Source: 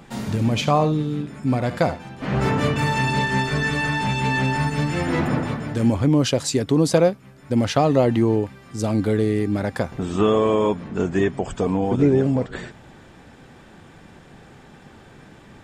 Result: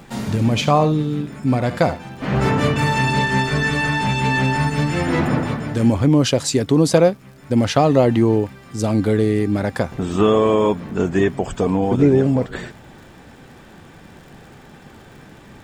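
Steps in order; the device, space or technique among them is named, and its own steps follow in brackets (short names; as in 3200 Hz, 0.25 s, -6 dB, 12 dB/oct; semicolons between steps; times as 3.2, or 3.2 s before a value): vinyl LP (crackle 70/s -42 dBFS; pink noise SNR 44 dB); gain +3 dB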